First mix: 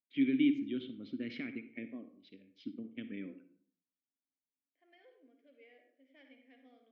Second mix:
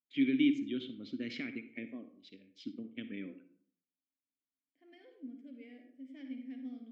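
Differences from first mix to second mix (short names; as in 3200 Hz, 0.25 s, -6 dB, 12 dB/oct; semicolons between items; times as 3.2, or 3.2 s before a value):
second voice: remove HPF 460 Hz 24 dB/oct; master: remove air absorption 200 m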